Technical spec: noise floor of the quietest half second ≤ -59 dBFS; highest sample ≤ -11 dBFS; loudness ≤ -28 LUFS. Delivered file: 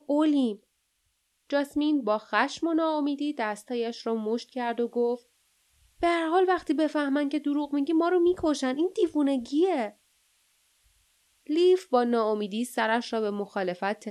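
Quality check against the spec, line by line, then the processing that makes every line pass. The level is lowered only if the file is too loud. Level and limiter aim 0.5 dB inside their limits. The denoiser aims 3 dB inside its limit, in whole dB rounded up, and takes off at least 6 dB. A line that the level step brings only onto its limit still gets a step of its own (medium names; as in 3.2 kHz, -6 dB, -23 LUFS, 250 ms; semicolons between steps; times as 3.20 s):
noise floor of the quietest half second -74 dBFS: pass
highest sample -10.0 dBFS: fail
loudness -27.0 LUFS: fail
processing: trim -1.5 dB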